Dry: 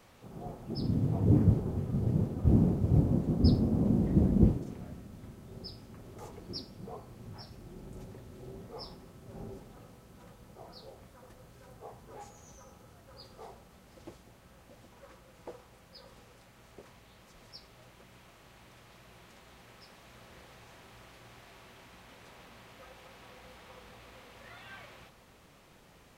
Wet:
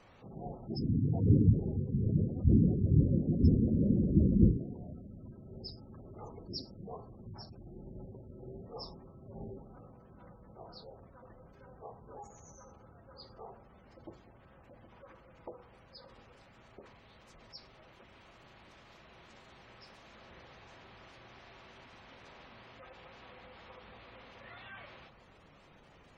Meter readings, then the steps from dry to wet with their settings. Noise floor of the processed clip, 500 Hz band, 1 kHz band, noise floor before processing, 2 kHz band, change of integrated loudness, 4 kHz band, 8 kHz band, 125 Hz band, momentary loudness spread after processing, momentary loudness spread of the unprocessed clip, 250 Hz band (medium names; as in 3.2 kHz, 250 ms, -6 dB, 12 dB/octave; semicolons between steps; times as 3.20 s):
-60 dBFS, -2.0 dB, -3.0 dB, -59 dBFS, -1.5 dB, -1.0 dB, -2.5 dB, no reading, -0.5 dB, 22 LU, 22 LU, -1.0 dB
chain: hum notches 60/120/180/240/300/360/420/480 Hz; spectral gate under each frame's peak -20 dB strong